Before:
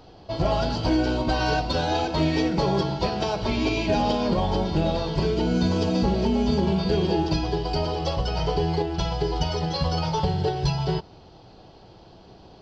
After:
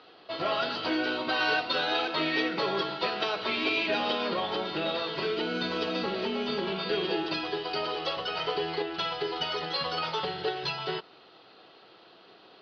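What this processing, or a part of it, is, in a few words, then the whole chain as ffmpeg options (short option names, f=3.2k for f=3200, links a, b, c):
phone earpiece: -af "highpass=420,equalizer=f=600:t=q:w=4:g=-4,equalizer=f=860:t=q:w=4:g=-7,equalizer=f=1.3k:t=q:w=4:g=8,equalizer=f=1.9k:t=q:w=4:g=6,equalizer=f=2.7k:t=q:w=4:g=5,equalizer=f=3.8k:t=q:w=4:g=6,lowpass=f=4.3k:w=0.5412,lowpass=f=4.3k:w=1.3066,volume=-1.5dB"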